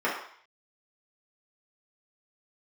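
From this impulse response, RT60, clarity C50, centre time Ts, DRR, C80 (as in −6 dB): 0.55 s, 4.0 dB, 40 ms, −7.5 dB, 7.5 dB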